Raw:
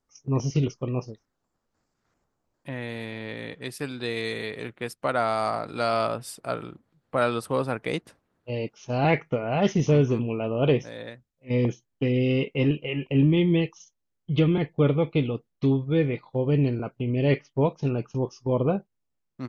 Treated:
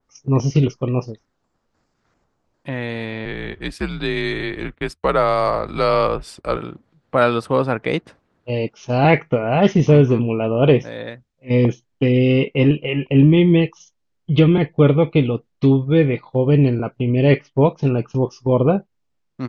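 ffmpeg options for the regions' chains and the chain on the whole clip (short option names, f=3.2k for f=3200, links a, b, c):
-filter_complex "[0:a]asettb=1/sr,asplit=3[a][b][c];[a]atrim=end=3.254[d];[b]atrim=start=3.25:end=6.57,asetpts=PTS-STARTPTS,afade=t=in:d=0.004:c=qsin,afade=t=out:st=3.316:d=0.004:c=qsin,agate=range=-33dB:threshold=-48dB:ratio=3:release=100:detection=peak,afreqshift=-84[e];[c]atrim=start=6.566[f];[d][e]acrossfade=d=0.004:c1=hsin:c2=qsin[g];[g][f]acrossfade=d=0.004:c1=qsin:c2=hsin,lowpass=6.2k,adynamicequalizer=threshold=0.00501:dfrequency=3500:dqfactor=0.7:tfrequency=3500:tqfactor=0.7:attack=5:release=100:ratio=0.375:range=3:mode=cutabove:tftype=highshelf,volume=8dB"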